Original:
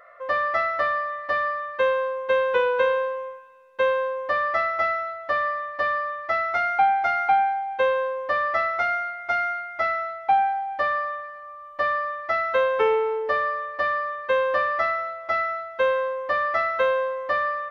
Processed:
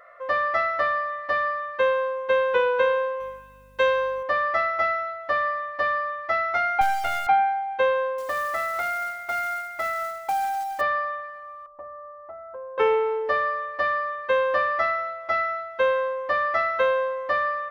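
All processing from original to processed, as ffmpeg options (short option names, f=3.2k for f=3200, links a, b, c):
-filter_complex "[0:a]asettb=1/sr,asplit=3[a][b][c];[a]atrim=end=3.204[d];[b]atrim=start=3.2:end=4.23,asetpts=PTS-STARTPTS,afade=t=in:d=0.004:c=qsin,afade=t=out:st=1.026:d=0.004:c=qsin,aemphasis=mode=production:type=75kf,aeval=exprs='val(0)+0.00224*(sin(2*PI*50*n/s)+sin(2*PI*2*50*n/s)/2+sin(2*PI*3*50*n/s)/3+sin(2*PI*4*50*n/s)/4+sin(2*PI*5*50*n/s)/5)':c=same[e];[c]atrim=start=4.226[f];[d][e]acrossfade=d=0.004:c1=hsin:c2=qsin[g];[g][f]acrossfade=d=0.004:c1=qsin:c2=hsin,asettb=1/sr,asplit=3[h][i][j];[h]atrim=end=6.814[k];[i]atrim=start=6.81:end=7.27,asetpts=PTS-STARTPTS,afade=t=in:d=0.004:c=qsin,afade=t=out:st=0.456:d=0.004:c=qsin,aeval=exprs='if(lt(val(0),0),0.251*val(0),val(0))':c=same,lowpass=4.8k,acrusher=bits=7:dc=4:mix=0:aa=0.000001[l];[j]atrim=start=7.266[m];[k][l]acrossfade=d=0.004:c1=hsin:c2=qsin[n];[n][m]acrossfade=d=0.004:c1=qsin:c2=hsin,asettb=1/sr,asplit=3[o][p][q];[o]atrim=end=8.184[r];[p]atrim=start=8.18:end=10.81,asetpts=PTS-STARTPTS,afade=t=in:d=0.004:c=qsin,afade=t=out:st=2.626:d=0.004:c=qsin,acrusher=bits=4:mode=log:mix=0:aa=0.000001,acompressor=threshold=-24dB:ratio=2.5:attack=3.2:release=140:knee=1:detection=peak[s];[q]atrim=start=10.806[t];[r][s]acrossfade=d=0.004:c1=hsin:c2=qsin[u];[u][t]acrossfade=d=0.004:c1=qsin:c2=hsin,asettb=1/sr,asplit=3[v][w][x];[v]atrim=end=11.664[y];[w]atrim=start=11.66:end=12.78,asetpts=PTS-STARTPTS,afade=t=in:d=0.004:c=qsin,afade=t=out:st=1.116:d=0.004:c=qsin,lowpass=f=1k:w=0.5412,lowpass=f=1k:w=1.3066,equalizer=f=220:w=0.63:g=-6,acompressor=threshold=-41dB:ratio=2.5:attack=3.2:release=140:knee=1:detection=peak[z];[x]atrim=start=12.776[aa];[y][z]acrossfade=d=0.004:c1=hsin:c2=qsin[ab];[ab][aa]acrossfade=d=0.004:c1=qsin:c2=hsin"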